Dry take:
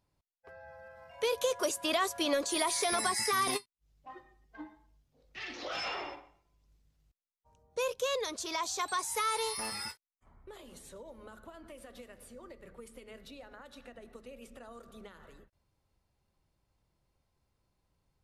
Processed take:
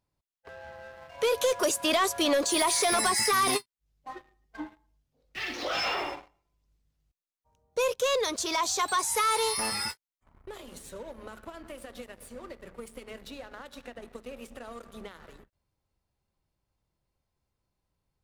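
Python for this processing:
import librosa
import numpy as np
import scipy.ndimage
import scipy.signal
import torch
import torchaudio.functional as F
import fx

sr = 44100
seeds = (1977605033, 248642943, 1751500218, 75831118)

y = fx.leveller(x, sr, passes=2)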